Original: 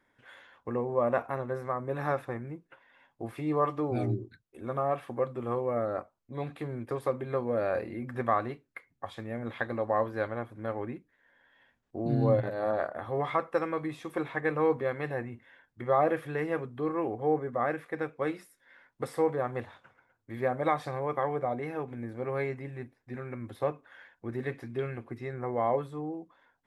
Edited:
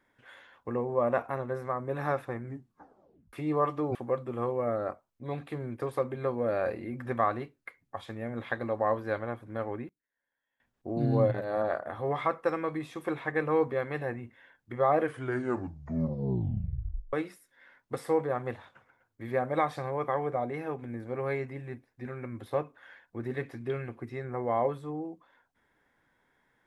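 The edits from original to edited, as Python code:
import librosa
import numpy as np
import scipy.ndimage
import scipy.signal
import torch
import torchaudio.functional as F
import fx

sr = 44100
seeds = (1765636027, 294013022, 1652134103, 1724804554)

y = fx.edit(x, sr, fx.tape_stop(start_s=2.42, length_s=0.91),
    fx.cut(start_s=3.95, length_s=1.09),
    fx.fade_down_up(start_s=10.71, length_s=1.25, db=-22.0, fade_s=0.27, curve='log'),
    fx.tape_stop(start_s=16.07, length_s=2.15), tone=tone)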